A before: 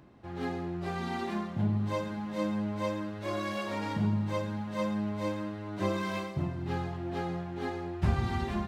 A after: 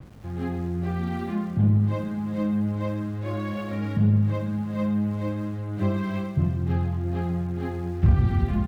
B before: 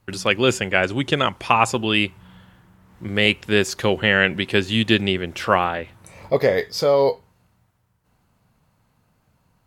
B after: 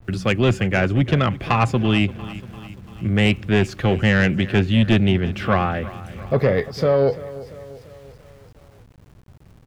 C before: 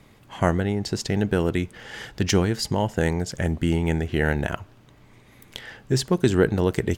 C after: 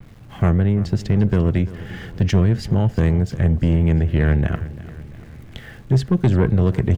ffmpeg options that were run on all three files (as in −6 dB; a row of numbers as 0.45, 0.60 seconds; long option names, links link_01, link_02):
-filter_complex "[0:a]asuperstop=centerf=940:order=4:qfactor=7.3,acrossover=split=130|770|3200[link_01][link_02][link_03][link_04];[link_01]acompressor=mode=upward:threshold=-51dB:ratio=2.5[link_05];[link_05][link_02][link_03][link_04]amix=inputs=4:normalize=0,bass=frequency=250:gain=12,treble=frequency=4000:gain=-11,asoftclip=type=tanh:threshold=-9dB,aecho=1:1:343|686|1029|1372|1715:0.141|0.0777|0.0427|0.0235|0.0129,aeval=exprs='val(0)*gte(abs(val(0)),0.00422)':channel_layout=same,adynamicequalizer=threshold=0.0158:dfrequency=4100:dqfactor=0.7:tfrequency=4100:tqfactor=0.7:attack=5:release=100:ratio=0.375:range=2:mode=cutabove:tftype=highshelf"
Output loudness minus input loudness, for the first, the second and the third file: +7.5, +0.5, +5.0 LU